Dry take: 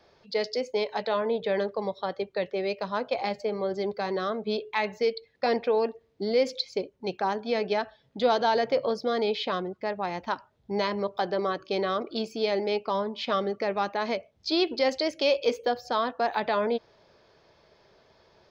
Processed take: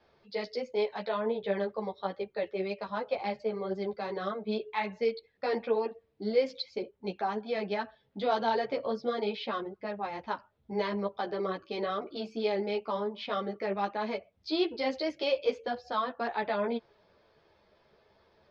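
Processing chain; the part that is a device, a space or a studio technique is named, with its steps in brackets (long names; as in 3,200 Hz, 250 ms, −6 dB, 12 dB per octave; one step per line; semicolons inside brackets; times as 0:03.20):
string-machine ensemble chorus (string-ensemble chorus; low-pass filter 4,000 Hz 12 dB per octave)
level −1.5 dB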